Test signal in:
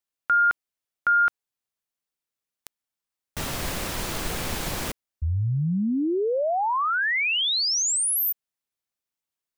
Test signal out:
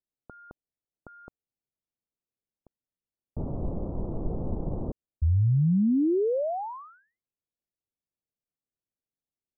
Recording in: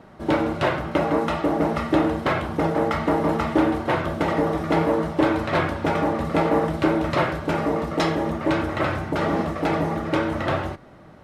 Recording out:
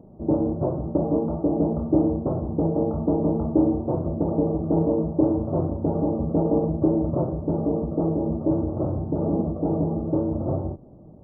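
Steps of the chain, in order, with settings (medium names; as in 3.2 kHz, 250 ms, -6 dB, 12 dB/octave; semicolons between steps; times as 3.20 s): Gaussian low-pass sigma 14 samples; trim +2.5 dB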